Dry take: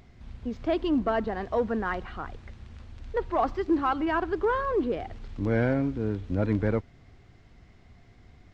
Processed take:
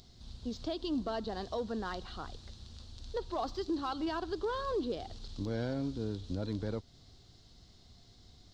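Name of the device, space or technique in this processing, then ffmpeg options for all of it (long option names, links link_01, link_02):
over-bright horn tweeter: -af "highshelf=frequency=3000:width_type=q:width=3:gain=11,alimiter=limit=-21dB:level=0:latency=1:release=199,volume=-5.5dB"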